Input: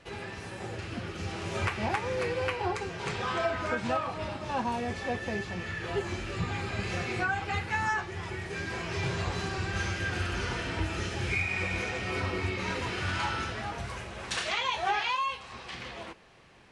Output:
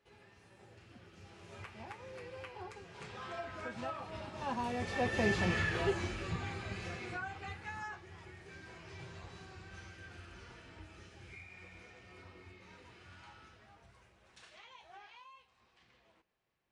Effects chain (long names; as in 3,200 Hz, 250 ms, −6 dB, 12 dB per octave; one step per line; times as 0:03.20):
source passing by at 0:05.45, 6 m/s, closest 1.6 metres
backwards echo 103 ms −18.5 dB
level +4.5 dB